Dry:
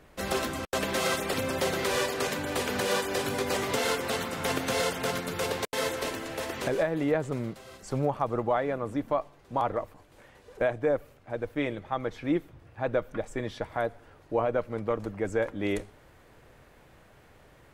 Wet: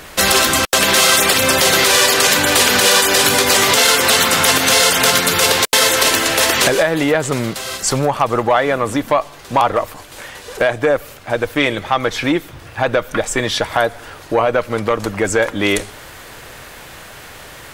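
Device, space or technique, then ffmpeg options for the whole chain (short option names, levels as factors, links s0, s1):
mastering chain: -af "equalizer=f=2200:t=o:w=0.77:g=-2.5,acompressor=threshold=0.0251:ratio=2,asoftclip=type=tanh:threshold=0.0841,tiltshelf=f=1100:g=-7.5,alimiter=level_in=14.1:limit=0.891:release=50:level=0:latency=1,volume=0.891"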